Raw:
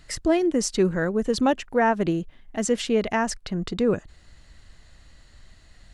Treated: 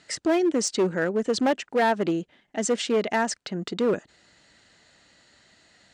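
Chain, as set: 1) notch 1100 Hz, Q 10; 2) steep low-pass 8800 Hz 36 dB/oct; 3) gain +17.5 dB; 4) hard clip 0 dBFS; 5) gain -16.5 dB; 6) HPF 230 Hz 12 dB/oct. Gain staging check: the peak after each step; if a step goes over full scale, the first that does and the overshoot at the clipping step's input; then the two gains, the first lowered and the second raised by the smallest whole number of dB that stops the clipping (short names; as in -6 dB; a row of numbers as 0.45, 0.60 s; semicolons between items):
-10.0, -10.0, +7.5, 0.0, -16.5, -11.5 dBFS; step 3, 7.5 dB; step 3 +9.5 dB, step 5 -8.5 dB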